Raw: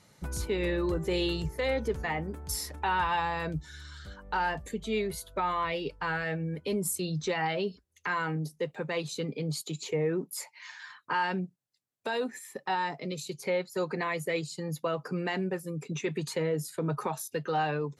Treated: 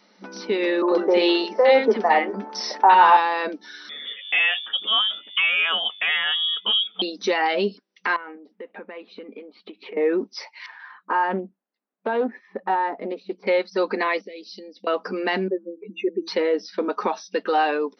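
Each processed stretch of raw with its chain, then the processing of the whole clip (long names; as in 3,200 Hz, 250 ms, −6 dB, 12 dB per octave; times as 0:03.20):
0:00.82–0:03.17: parametric band 780 Hz +10 dB 1.9 octaves + three-band delay without the direct sound mids, highs, lows 60/90 ms, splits 320/1,300 Hz
0:03.89–0:07.02: parametric band 2,300 Hz +3 dB 0.21 octaves + voice inversion scrambler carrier 3,500 Hz
0:08.16–0:09.97: low-pass filter 2,600 Hz 24 dB per octave + downward compressor 5 to 1, threshold −44 dBFS
0:10.66–0:13.47: low-pass filter 1,400 Hz + highs frequency-modulated by the lows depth 0.22 ms
0:14.21–0:14.87: downward compressor 12 to 1, threshold −41 dBFS + Butterworth band-reject 1,200 Hz, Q 0.64
0:15.48–0:16.28: expanding power law on the bin magnitudes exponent 2.7 + Butterworth band-reject 5,400 Hz, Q 1.6 + hum removal 165.5 Hz, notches 10
whole clip: brick-wall band-pass 190–6,000 Hz; automatic gain control gain up to 4.5 dB; level +4.5 dB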